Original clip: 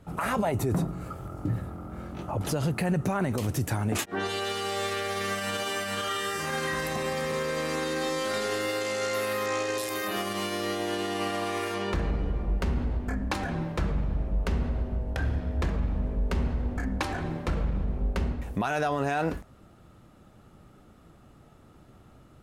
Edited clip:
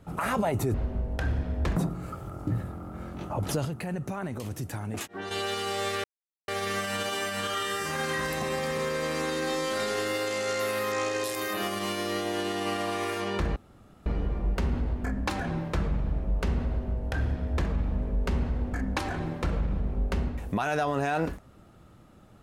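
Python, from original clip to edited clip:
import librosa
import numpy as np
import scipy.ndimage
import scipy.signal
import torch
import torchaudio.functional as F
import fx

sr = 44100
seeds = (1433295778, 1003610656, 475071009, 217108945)

y = fx.edit(x, sr, fx.clip_gain(start_s=2.63, length_s=1.66, db=-6.5),
    fx.insert_silence(at_s=5.02, length_s=0.44),
    fx.insert_room_tone(at_s=12.1, length_s=0.5),
    fx.duplicate(start_s=14.71, length_s=1.02, to_s=0.74), tone=tone)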